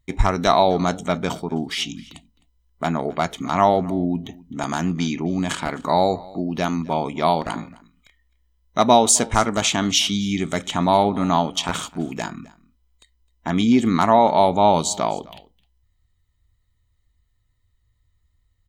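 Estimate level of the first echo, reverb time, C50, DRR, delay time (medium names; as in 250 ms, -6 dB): -22.5 dB, no reverb, no reverb, no reverb, 260 ms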